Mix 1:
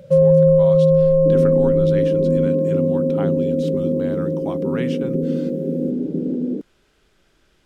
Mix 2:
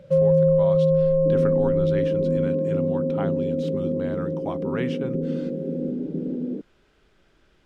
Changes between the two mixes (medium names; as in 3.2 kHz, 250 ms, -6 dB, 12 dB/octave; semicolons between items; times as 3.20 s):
first sound -5.0 dB; second sound: add peaking EQ 310 Hz -6 dB 2.3 oct; master: add treble shelf 5.5 kHz -12 dB